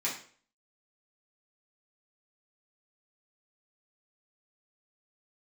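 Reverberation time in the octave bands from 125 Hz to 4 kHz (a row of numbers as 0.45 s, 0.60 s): 0.45 s, 0.50 s, 0.50 s, 0.45 s, 0.45 s, 0.40 s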